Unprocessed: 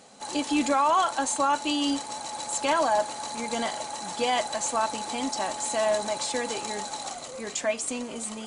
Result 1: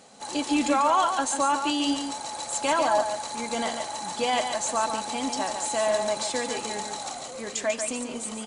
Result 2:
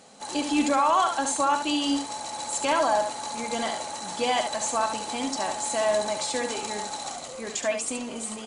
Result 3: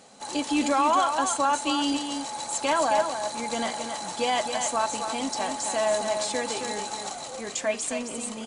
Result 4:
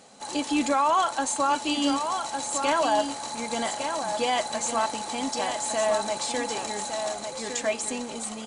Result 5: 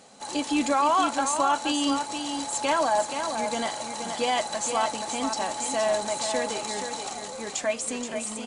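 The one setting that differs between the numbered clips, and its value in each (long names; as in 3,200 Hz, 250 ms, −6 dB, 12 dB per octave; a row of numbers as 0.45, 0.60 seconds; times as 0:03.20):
single-tap delay, delay time: 143, 71, 268, 1,158, 475 milliseconds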